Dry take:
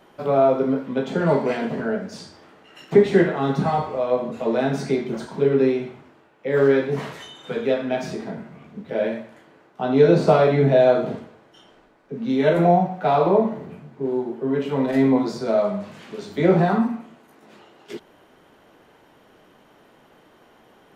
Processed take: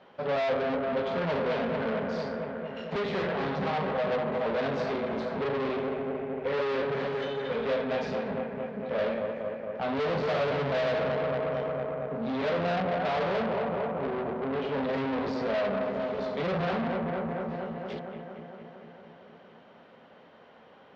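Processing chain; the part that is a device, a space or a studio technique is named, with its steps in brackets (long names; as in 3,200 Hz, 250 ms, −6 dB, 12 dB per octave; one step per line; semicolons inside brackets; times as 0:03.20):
analogue delay pedal into a guitar amplifier (bucket-brigade delay 227 ms, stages 4,096, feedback 73%, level −8.5 dB; tube saturation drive 28 dB, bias 0.65; loudspeaker in its box 80–4,500 Hz, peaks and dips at 130 Hz −4 dB, 330 Hz −9 dB, 530 Hz +5 dB)
level +1 dB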